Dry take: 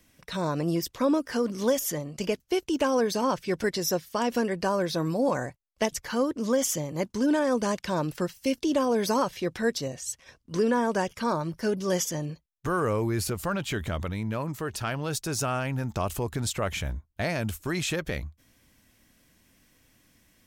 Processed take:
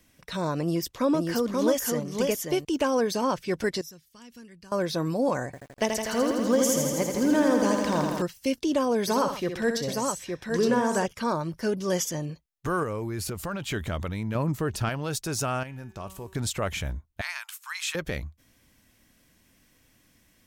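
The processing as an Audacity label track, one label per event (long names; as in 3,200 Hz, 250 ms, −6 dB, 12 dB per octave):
0.610000	2.650000	single-tap delay 531 ms −3.5 dB
3.810000	4.720000	guitar amp tone stack bass-middle-treble 6-0-2
5.450000	8.220000	feedback echo at a low word length 82 ms, feedback 80%, word length 9 bits, level −5 dB
9.010000	11.060000	multi-tap delay 65/126/867 ms −7.5/−13/−4 dB
12.830000	13.620000	downward compressor 2.5 to 1, threshold −29 dBFS
14.350000	14.890000	low-shelf EQ 470 Hz +7.5 dB
15.630000	16.350000	tuned comb filter 190 Hz, decay 0.83 s, mix 70%
17.210000	17.950000	Butterworth high-pass 940 Hz 48 dB per octave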